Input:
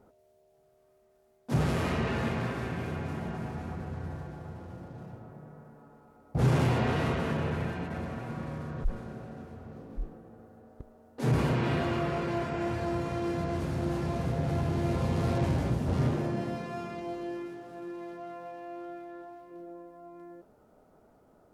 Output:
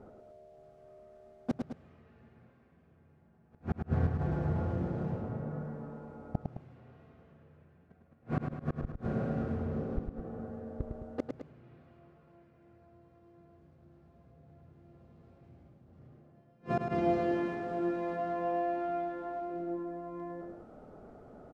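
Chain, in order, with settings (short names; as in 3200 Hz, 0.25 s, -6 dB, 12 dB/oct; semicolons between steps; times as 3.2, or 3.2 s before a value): Bessel low-pass 6700 Hz; high shelf 2300 Hz -10.5 dB; notch 950 Hz, Q 9.7; flipped gate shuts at -28 dBFS, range -39 dB; on a send: loudspeakers at several distances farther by 36 m -5 dB, 73 m -11 dB; on the sum: gain +8.5 dB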